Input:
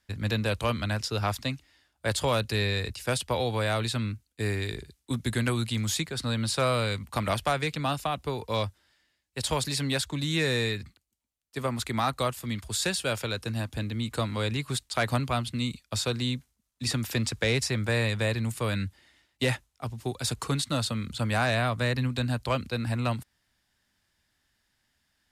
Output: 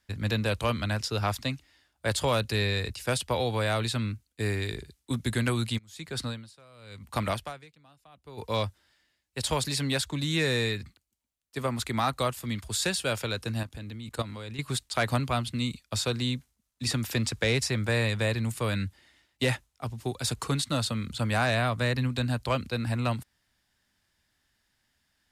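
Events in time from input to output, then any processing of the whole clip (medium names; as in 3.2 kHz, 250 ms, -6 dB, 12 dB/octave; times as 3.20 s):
5.77–8.37 s: logarithmic tremolo 1.3 Hz -> 0.56 Hz, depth 30 dB
13.63–14.59 s: level held to a coarse grid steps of 13 dB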